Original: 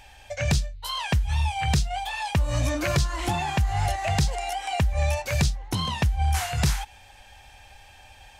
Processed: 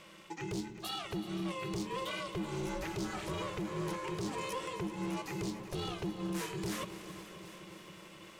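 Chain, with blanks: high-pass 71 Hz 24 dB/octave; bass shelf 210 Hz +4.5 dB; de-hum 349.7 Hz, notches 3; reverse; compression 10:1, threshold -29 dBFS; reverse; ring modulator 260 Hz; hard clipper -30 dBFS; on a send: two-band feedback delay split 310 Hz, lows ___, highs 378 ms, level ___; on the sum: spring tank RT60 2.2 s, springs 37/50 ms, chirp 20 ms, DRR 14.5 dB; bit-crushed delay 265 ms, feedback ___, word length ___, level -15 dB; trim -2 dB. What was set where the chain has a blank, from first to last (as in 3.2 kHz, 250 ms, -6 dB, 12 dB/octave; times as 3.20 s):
181 ms, -15 dB, 80%, 11-bit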